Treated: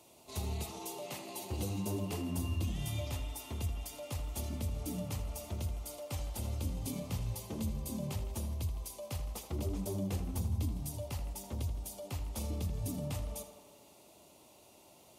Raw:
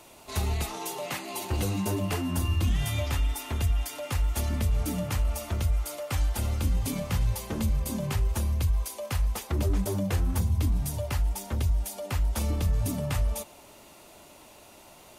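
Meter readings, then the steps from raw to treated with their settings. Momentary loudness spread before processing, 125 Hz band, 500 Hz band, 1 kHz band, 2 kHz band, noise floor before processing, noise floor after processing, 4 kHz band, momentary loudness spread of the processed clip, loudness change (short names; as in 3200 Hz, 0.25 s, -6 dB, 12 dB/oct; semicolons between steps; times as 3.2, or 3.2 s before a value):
5 LU, -9.5 dB, -7.5 dB, -10.5 dB, -13.0 dB, -52 dBFS, -60 dBFS, -9.0 dB, 6 LU, -9.5 dB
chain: HPF 72 Hz; bell 1600 Hz -12 dB 0.93 oct; on a send: tape echo 81 ms, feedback 74%, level -9.5 dB, low-pass 4700 Hz; on the sum: gain -7.5 dB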